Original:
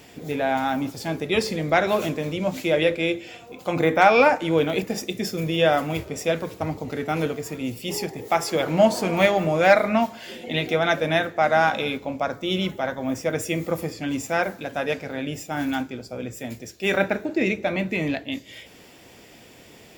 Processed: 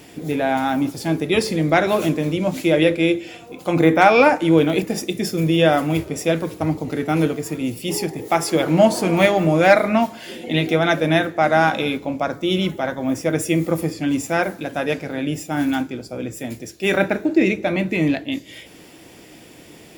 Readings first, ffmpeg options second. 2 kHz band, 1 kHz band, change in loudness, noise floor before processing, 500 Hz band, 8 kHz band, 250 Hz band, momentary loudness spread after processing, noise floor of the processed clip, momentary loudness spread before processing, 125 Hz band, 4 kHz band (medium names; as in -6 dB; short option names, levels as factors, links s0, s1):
+2.5 dB, +2.5 dB, +4.0 dB, -48 dBFS, +3.0 dB, +4.5 dB, +7.0 dB, 10 LU, -44 dBFS, 12 LU, +6.5 dB, +2.5 dB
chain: -af "equalizer=f=160:t=o:w=0.33:g=5,equalizer=f=315:t=o:w=0.33:g=8,equalizer=f=10000:t=o:w=0.33:g=7,volume=1.33"